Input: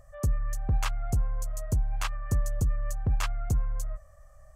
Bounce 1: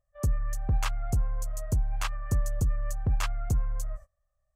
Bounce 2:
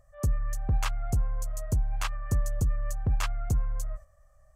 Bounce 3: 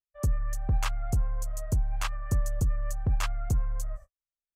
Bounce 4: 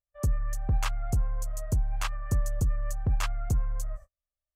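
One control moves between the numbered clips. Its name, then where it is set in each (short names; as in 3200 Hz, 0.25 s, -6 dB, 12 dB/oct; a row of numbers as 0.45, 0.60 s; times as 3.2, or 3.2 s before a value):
gate, range: -25, -7, -57, -43 dB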